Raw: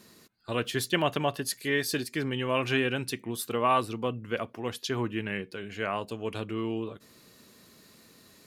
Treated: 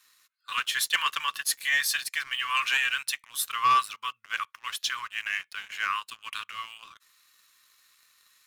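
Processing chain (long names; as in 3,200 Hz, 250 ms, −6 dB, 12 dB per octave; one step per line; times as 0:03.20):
elliptic high-pass filter 1,100 Hz, stop band 40 dB
notch filter 4,700 Hz, Q 13
leveller curve on the samples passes 2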